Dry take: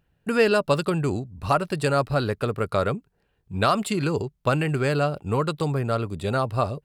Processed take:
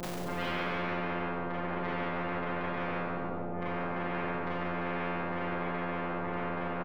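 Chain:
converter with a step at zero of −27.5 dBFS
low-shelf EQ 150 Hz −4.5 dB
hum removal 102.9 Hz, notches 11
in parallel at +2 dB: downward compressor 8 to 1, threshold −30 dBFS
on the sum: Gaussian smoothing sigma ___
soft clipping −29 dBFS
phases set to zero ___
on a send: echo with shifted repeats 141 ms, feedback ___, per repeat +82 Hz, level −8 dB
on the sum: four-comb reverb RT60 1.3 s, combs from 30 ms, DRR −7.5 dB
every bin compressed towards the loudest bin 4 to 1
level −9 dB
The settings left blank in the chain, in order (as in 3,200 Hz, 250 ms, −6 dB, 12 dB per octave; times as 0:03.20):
20 samples, 175 Hz, 36%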